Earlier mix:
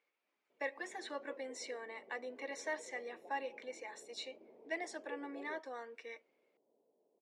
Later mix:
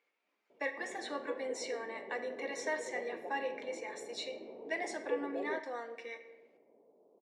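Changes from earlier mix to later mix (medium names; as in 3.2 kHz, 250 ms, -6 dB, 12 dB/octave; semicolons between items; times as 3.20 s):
background +11.0 dB; reverb: on, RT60 1.0 s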